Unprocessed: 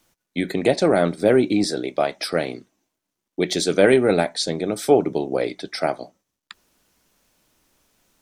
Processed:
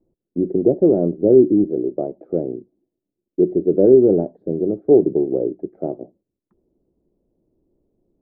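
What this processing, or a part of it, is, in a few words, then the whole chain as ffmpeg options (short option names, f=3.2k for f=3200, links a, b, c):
under water: -af "lowpass=f=520:w=0.5412,lowpass=f=520:w=1.3066,equalizer=f=360:t=o:w=0.35:g=8,volume=1.5dB"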